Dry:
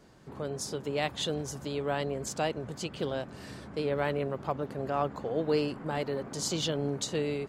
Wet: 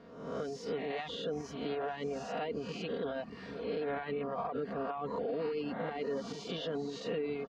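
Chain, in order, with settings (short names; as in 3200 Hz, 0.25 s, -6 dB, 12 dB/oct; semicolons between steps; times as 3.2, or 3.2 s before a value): spectral swells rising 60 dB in 0.87 s; HPF 150 Hz 6 dB/oct; notch 890 Hz, Q 20; comb 4.3 ms, depth 60%; limiter -25.5 dBFS, peak gain reduction 11.5 dB; air absorption 250 m; darkening echo 0.429 s, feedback 85%, low-pass 3800 Hz, level -20 dB; reverb removal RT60 0.78 s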